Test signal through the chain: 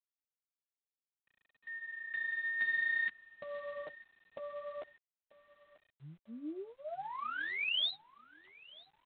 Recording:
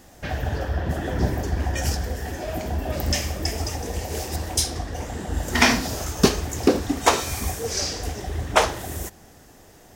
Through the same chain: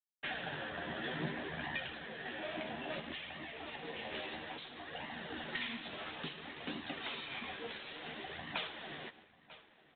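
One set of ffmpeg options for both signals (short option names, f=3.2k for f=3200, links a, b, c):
-filter_complex "[0:a]lowshelf=f=420:g=-12,asoftclip=type=hard:threshold=-18.5dB,equalizer=f=640:w=0.44:g=-9.5,aeval=exprs='0.178*(cos(1*acos(clip(val(0)/0.178,-1,1)))-cos(1*PI/2))+0.0251*(cos(2*acos(clip(val(0)/0.178,-1,1)))-cos(2*PI/2))+0.00224*(cos(3*acos(clip(val(0)/0.178,-1,1)))-cos(3*PI/2))+0.00178*(cos(7*acos(clip(val(0)/0.178,-1,1)))-cos(7*PI/2))+0.01*(cos(8*acos(clip(val(0)/0.178,-1,1)))-cos(8*PI/2))':c=same,highpass=f=160:w=0.5412,highpass=f=160:w=1.3066,asplit=2[a][b];[b]adelay=13,volume=-5dB[c];[a][c]amix=inputs=2:normalize=0,acrossover=split=230|3000[d][e][f];[e]acompressor=threshold=-38dB:ratio=5[g];[d][g][f]amix=inputs=3:normalize=0,flanger=delay=1:depth=9:regen=-16:speed=0.59:shape=sinusoidal,agate=range=-51dB:threshold=-55dB:ratio=16:detection=peak,asplit=2[h][i];[i]adelay=942,lowpass=f=3k:p=1,volume=-19.5dB,asplit=2[j][k];[k]adelay=942,lowpass=f=3k:p=1,volume=0.4,asplit=2[l][m];[m]adelay=942,lowpass=f=3k:p=1,volume=0.4[n];[h][j][l][n]amix=inputs=4:normalize=0,alimiter=level_in=3.5dB:limit=-24dB:level=0:latency=1:release=356,volume=-3.5dB,volume=4dB" -ar 8000 -c:a adpcm_g726 -b:a 24k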